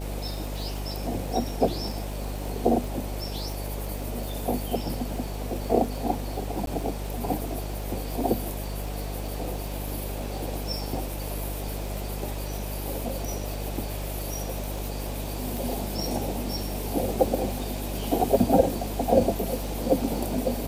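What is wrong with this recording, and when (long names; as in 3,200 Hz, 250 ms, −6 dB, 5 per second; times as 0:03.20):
mains buzz 50 Hz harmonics 14 −33 dBFS
surface crackle 45 per second −32 dBFS
0:06.66–0:06.67: drop-out 12 ms
0:15.57: click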